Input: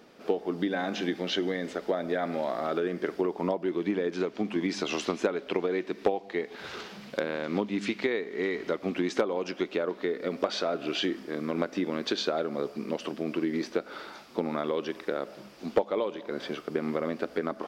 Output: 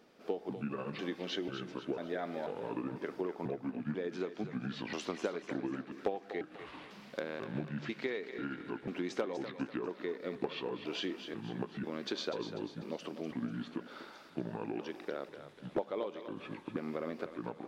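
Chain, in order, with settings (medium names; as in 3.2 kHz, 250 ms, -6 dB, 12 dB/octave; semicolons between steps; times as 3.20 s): pitch shift switched off and on -5.5 st, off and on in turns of 493 ms; thinning echo 246 ms, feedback 46%, level -9 dB; trim -8.5 dB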